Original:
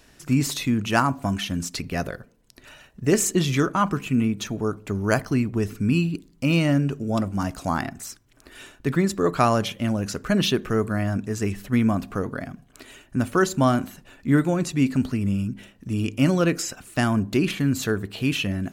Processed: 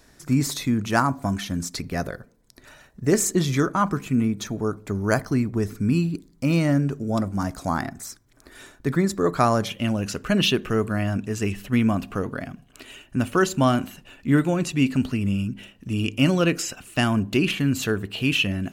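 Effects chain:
parametric band 2,800 Hz −9.5 dB 0.33 octaves, from 0:09.70 +8 dB

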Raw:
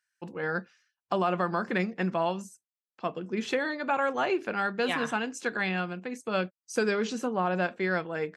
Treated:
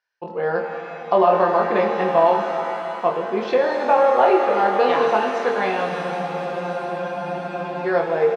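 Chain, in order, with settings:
Butterworth low-pass 5,400 Hz
flat-topped bell 650 Hz +11 dB
double-tracking delay 24 ms −4.5 dB
frozen spectrum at 0:05.92, 1.94 s
reverb with rising layers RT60 3.3 s, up +7 semitones, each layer −8 dB, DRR 3.5 dB

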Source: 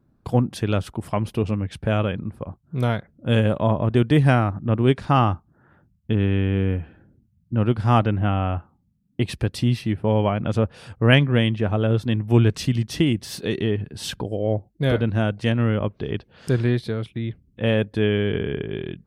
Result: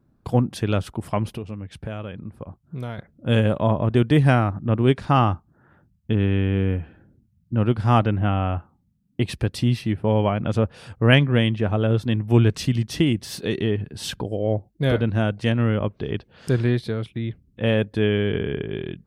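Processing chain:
0:01.35–0:02.98: downward compressor 3 to 1, threshold −32 dBFS, peak gain reduction 11.5 dB

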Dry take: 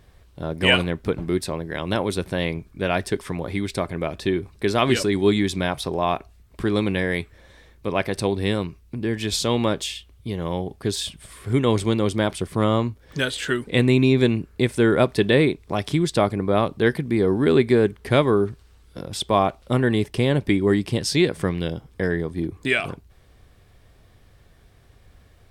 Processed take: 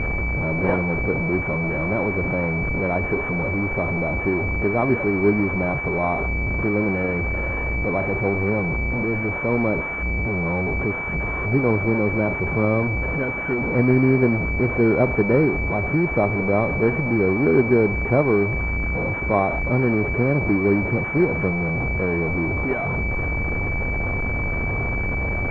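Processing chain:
linear delta modulator 16 kbit/s, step −17.5 dBFS
switching amplifier with a slow clock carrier 2,300 Hz

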